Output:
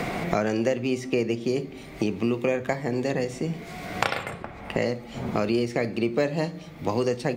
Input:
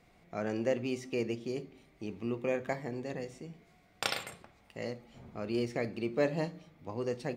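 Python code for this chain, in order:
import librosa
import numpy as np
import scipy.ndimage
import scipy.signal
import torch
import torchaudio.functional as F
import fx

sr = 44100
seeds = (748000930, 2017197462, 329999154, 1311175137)

y = fx.band_squash(x, sr, depth_pct=100)
y = y * librosa.db_to_amplitude(9.0)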